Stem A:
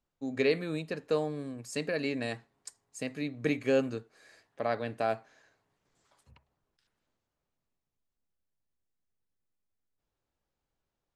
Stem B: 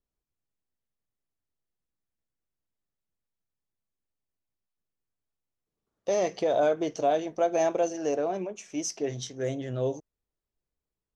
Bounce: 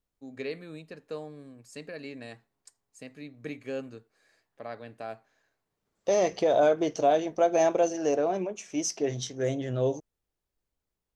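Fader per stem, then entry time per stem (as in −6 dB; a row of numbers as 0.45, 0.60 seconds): −8.5, +2.0 decibels; 0.00, 0.00 seconds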